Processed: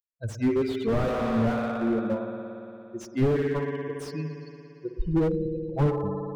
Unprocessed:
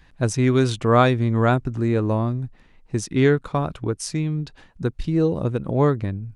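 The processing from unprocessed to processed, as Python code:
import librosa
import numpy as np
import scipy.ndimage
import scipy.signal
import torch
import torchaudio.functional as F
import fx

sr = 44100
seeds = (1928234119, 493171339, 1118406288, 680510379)

y = fx.bin_expand(x, sr, power=3.0)
y = fx.noise_reduce_blind(y, sr, reduce_db=19)
y = fx.rev_spring(y, sr, rt60_s=2.9, pass_ms=(57,), chirp_ms=60, drr_db=4.5)
y = fx.slew_limit(y, sr, full_power_hz=24.0)
y = F.gain(torch.from_numpy(y), 3.0).numpy()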